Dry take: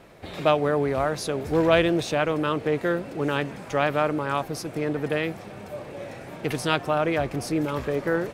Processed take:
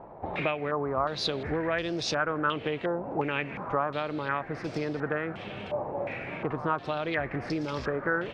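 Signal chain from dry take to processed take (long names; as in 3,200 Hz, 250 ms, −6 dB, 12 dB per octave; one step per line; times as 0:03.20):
downward compressor 6 to 1, threshold −28 dBFS, peak gain reduction 13.5 dB
low-pass on a step sequencer 2.8 Hz 880–5,100 Hz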